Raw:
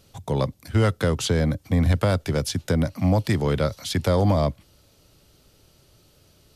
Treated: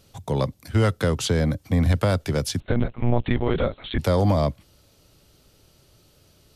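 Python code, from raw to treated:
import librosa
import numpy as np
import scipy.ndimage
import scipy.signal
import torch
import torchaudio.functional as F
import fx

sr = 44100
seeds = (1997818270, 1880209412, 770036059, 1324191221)

y = fx.lpc_monotone(x, sr, seeds[0], pitch_hz=120.0, order=10, at=(2.6, 3.99))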